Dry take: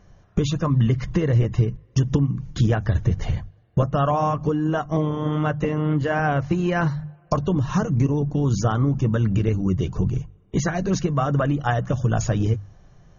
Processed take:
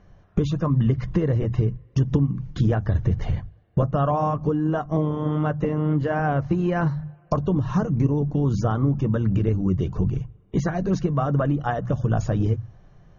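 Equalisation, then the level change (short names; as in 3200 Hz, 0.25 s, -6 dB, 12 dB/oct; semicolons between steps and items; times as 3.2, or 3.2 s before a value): notches 60/120 Hz; dynamic EQ 2500 Hz, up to -6 dB, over -41 dBFS, Q 0.81; air absorption 140 m; 0.0 dB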